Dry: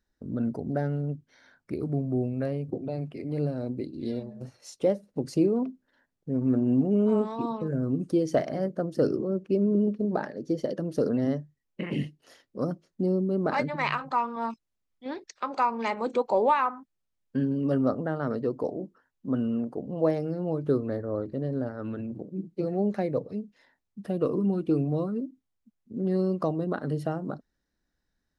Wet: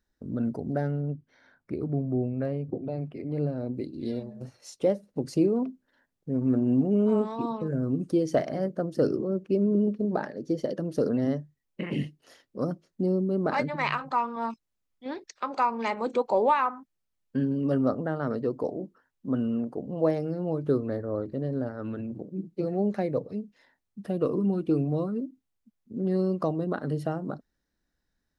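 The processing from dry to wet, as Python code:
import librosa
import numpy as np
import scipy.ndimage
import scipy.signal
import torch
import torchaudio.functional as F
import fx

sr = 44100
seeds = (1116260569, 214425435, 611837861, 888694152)

y = fx.high_shelf(x, sr, hz=3700.0, db=-11.0, at=(0.91, 3.74))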